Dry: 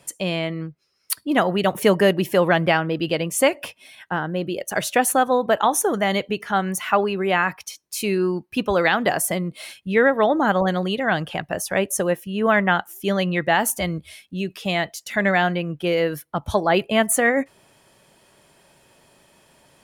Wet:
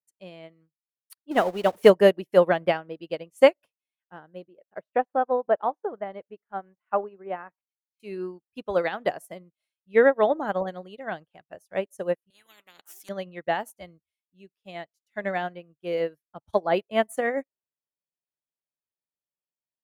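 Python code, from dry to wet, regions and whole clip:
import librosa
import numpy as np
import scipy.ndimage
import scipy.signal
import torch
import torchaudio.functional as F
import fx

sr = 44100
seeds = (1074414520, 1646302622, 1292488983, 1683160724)

y = fx.chain(x, sr, fx.zero_step(step_db=-24.0),
    fx.peak_eq(hz=140.0, db=-14.0, octaves=0.31), at=(1.31, 1.9))
y = fx.chain(y, sr, fx.lowpass(hz=1500.0, slope=12),
    fx.low_shelf(hz=160.0, db=-7.5), at=(4.45, 8.0))
y = fx.chain(y, sr, fx.highpass(hz=520.0, slope=12),
    fx.spectral_comp(ratio=10.0), at=(12.3, 13.09))
y = fx.dynamic_eq(y, sr, hz=540.0, q=0.88, threshold_db=-31.0, ratio=4.0, max_db=7)
y = fx.upward_expand(y, sr, threshold_db=-38.0, expansion=2.5)
y = y * librosa.db_to_amplitude(-2.0)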